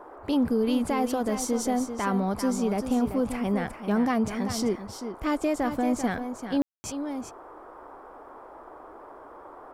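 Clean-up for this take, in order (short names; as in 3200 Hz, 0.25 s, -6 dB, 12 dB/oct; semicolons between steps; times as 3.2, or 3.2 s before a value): room tone fill 6.62–6.84; noise print and reduce 27 dB; inverse comb 0.39 s -9 dB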